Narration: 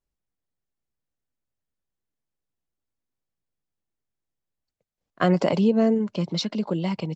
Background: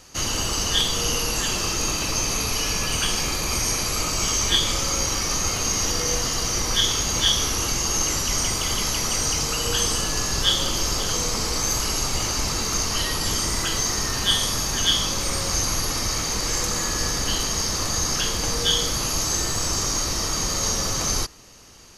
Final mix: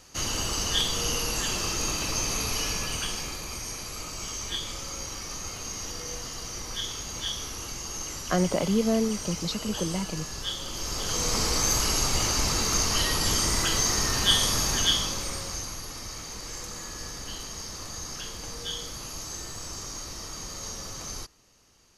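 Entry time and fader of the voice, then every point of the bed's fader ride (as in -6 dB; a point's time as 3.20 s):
3.10 s, -4.5 dB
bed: 2.62 s -4.5 dB
3.59 s -12.5 dB
10.63 s -12.5 dB
11.36 s -1 dB
14.70 s -1 dB
15.78 s -13.5 dB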